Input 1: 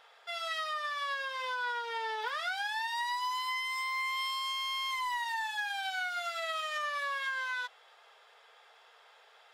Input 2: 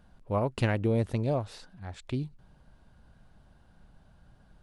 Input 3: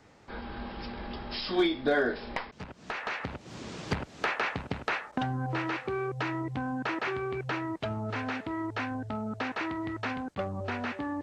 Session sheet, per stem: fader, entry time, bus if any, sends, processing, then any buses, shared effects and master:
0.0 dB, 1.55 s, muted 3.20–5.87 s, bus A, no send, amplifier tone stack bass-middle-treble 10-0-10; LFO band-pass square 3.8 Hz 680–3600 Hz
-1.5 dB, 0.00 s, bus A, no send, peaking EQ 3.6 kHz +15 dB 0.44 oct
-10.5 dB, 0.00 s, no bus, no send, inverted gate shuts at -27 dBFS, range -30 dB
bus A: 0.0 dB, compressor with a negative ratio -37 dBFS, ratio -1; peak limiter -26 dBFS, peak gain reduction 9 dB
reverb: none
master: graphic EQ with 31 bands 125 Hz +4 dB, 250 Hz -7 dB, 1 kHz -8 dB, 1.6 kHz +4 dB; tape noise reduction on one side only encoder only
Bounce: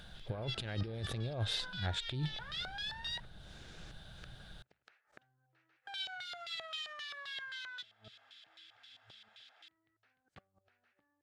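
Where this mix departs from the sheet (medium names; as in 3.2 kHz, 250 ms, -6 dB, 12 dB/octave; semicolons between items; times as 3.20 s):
stem 1: entry 1.55 s -> 0.15 s; stem 3 -10.5 dB -> -18.0 dB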